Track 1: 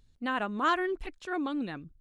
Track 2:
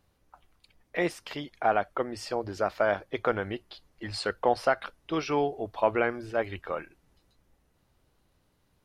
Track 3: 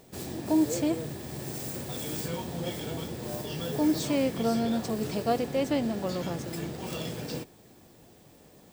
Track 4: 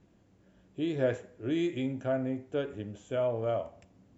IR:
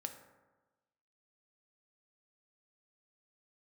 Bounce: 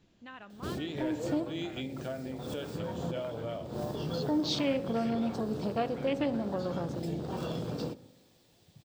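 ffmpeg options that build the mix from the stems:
-filter_complex "[0:a]volume=-16dB,asplit=2[link_01][link_02];[link_02]volume=-12dB[link_03];[1:a]volume=-19dB[link_04];[2:a]afwtdn=0.01,adelay=500,volume=3dB,asplit=2[link_05][link_06];[link_06]volume=-10.5dB[link_07];[3:a]volume=-3.5dB,asplit=2[link_08][link_09];[link_09]apad=whole_len=406754[link_10];[link_05][link_10]sidechaincompress=threshold=-53dB:ratio=8:attack=16:release=155[link_11];[link_01][link_04]amix=inputs=2:normalize=0,afwtdn=0.00126,acompressor=threshold=-48dB:ratio=6,volume=0dB[link_12];[link_11][link_08]amix=inputs=2:normalize=0,acompressor=threshold=-35dB:ratio=6,volume=0dB[link_13];[4:a]atrim=start_sample=2205[link_14];[link_03][link_07]amix=inputs=2:normalize=0[link_15];[link_15][link_14]afir=irnorm=-1:irlink=0[link_16];[link_12][link_13][link_16]amix=inputs=3:normalize=0,equalizer=frequency=3900:width=0.88:gain=11.5"

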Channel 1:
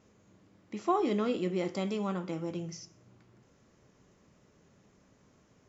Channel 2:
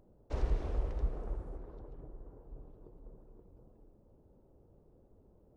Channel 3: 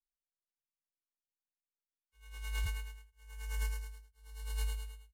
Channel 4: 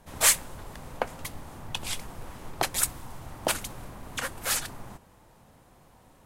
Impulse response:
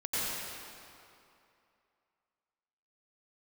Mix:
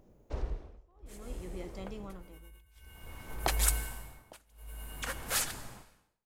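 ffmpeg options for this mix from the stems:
-filter_complex "[0:a]volume=-11dB,asplit=2[link_01][link_02];[1:a]volume=2.5dB[link_03];[2:a]firequalizer=gain_entry='entry(2800,0);entry(4400,-15);entry(11000,8)':delay=0.05:min_phase=1,volume=-1dB,asplit=2[link_04][link_05];[link_05]volume=-3dB[link_06];[3:a]adelay=850,volume=-4dB,afade=type=in:start_time=2.59:duration=0.5:silence=0.251189,asplit=2[link_07][link_08];[link_08]volume=-20dB[link_09];[link_02]apad=whole_len=313532[link_10];[link_07][link_10]sidechaincompress=threshold=-45dB:ratio=8:attack=9.8:release=132[link_11];[4:a]atrim=start_sample=2205[link_12];[link_06][link_09]amix=inputs=2:normalize=0[link_13];[link_13][link_12]afir=irnorm=-1:irlink=0[link_14];[link_01][link_03][link_04][link_11][link_14]amix=inputs=5:normalize=0,tremolo=f=0.56:d=0.98"

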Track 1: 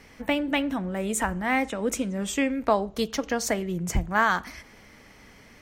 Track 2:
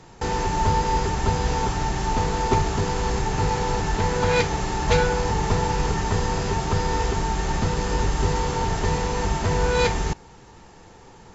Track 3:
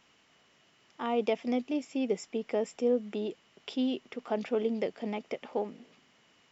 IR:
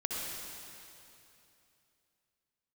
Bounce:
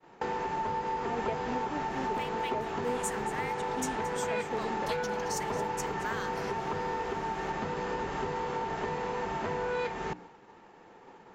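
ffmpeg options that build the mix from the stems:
-filter_complex "[0:a]highpass=1200,equalizer=frequency=5300:width=0.69:gain=6,adelay=1900,volume=-6.5dB,asplit=2[link_01][link_02];[link_02]volume=-22dB[link_03];[1:a]acrossover=split=180 2900:gain=0.1 1 0.112[link_04][link_05][link_06];[link_04][link_05][link_06]amix=inputs=3:normalize=0,volume=0.5dB[link_07];[2:a]afwtdn=0.00631,volume=-8.5dB[link_08];[link_01][link_07]amix=inputs=2:normalize=0,bandreject=frequency=60:width_type=h:width=6,bandreject=frequency=120:width_type=h:width=6,bandreject=frequency=180:width_type=h:width=6,bandreject=frequency=240:width_type=h:width=6,bandreject=frequency=300:width_type=h:width=6,acompressor=threshold=-31dB:ratio=5,volume=0dB[link_09];[link_03]aecho=0:1:224:1[link_10];[link_08][link_09][link_10]amix=inputs=3:normalize=0,agate=range=-33dB:threshold=-44dB:ratio=3:detection=peak,highshelf=frequency=4900:gain=4.5"

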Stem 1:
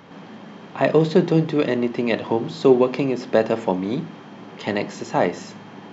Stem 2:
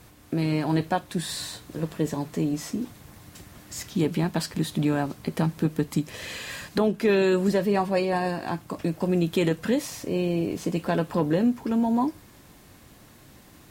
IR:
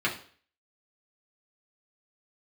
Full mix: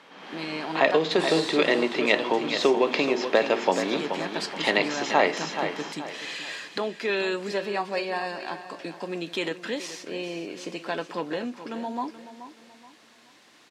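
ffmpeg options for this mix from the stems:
-filter_complex "[0:a]acompressor=threshold=-15dB:ratio=6,volume=-3dB,asplit=2[link_01][link_02];[link_02]volume=-9dB[link_03];[1:a]volume=-8.5dB,asplit=2[link_04][link_05];[link_05]volume=-13dB[link_06];[link_03][link_06]amix=inputs=2:normalize=0,aecho=0:1:428|856|1284|1712|2140:1|0.35|0.122|0.0429|0.015[link_07];[link_01][link_04][link_07]amix=inputs=3:normalize=0,tiltshelf=frequency=1400:gain=-5.5,dynaudnorm=framelen=160:gausssize=3:maxgain=8dB,highpass=320,lowpass=4700"

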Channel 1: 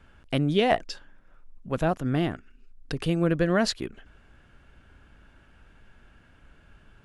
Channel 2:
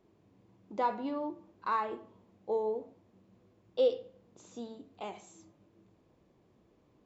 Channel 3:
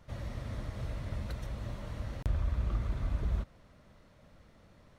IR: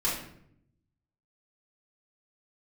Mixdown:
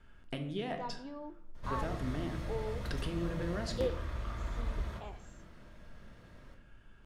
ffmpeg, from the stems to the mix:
-filter_complex "[0:a]acompressor=threshold=-28dB:ratio=10,volume=-9dB,asplit=2[link_01][link_02];[link_02]volume=-11dB[link_03];[1:a]dynaudnorm=framelen=300:gausssize=7:maxgain=7.5dB,volume=-15dB[link_04];[2:a]acrossover=split=480|3000[link_05][link_06][link_07];[link_05]acompressor=threshold=-40dB:ratio=6[link_08];[link_08][link_06][link_07]amix=inputs=3:normalize=0,adelay=1550,volume=-2dB,asplit=2[link_09][link_10];[link_10]volume=-8dB[link_11];[3:a]atrim=start_sample=2205[link_12];[link_03][link_11]amix=inputs=2:normalize=0[link_13];[link_13][link_12]afir=irnorm=-1:irlink=0[link_14];[link_01][link_04][link_09][link_14]amix=inputs=4:normalize=0"

